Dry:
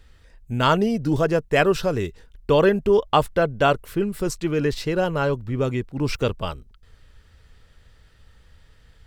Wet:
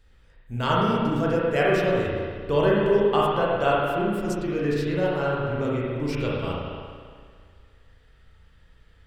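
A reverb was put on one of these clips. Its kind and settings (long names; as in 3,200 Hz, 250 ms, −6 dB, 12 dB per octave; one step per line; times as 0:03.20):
spring reverb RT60 1.9 s, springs 34/57 ms, chirp 80 ms, DRR −5.5 dB
level −8.5 dB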